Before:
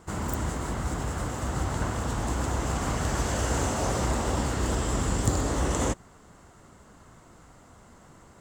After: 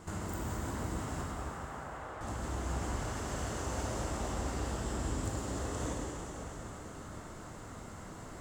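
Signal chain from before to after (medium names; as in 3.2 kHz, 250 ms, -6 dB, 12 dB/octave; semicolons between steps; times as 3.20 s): compression 12:1, threshold -39 dBFS, peak gain reduction 20.5 dB; 1.21–2.21 s: band-pass 570–2000 Hz; plate-style reverb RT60 4.3 s, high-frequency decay 0.85×, DRR -4.5 dB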